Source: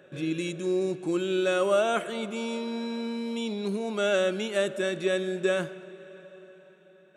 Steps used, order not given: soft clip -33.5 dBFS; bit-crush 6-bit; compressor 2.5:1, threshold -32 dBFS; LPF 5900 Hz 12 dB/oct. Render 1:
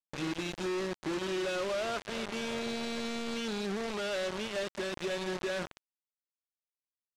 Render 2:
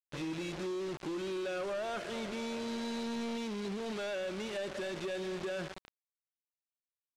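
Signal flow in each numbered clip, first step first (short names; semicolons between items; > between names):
compressor > soft clip > bit-crush > LPF; bit-crush > compressor > soft clip > LPF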